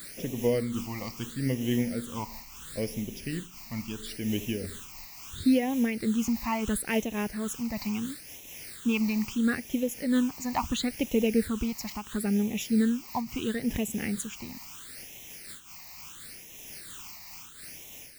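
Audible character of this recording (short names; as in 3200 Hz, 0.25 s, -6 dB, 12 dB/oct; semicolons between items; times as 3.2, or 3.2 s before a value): a quantiser's noise floor 8-bit, dither triangular; phasing stages 8, 0.74 Hz, lowest notch 440–1400 Hz; noise-modulated level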